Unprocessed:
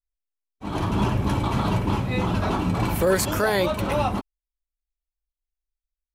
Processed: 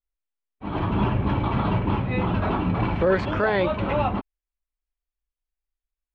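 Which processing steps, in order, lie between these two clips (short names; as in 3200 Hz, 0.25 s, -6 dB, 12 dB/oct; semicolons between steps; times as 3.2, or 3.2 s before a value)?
LPF 3100 Hz 24 dB/oct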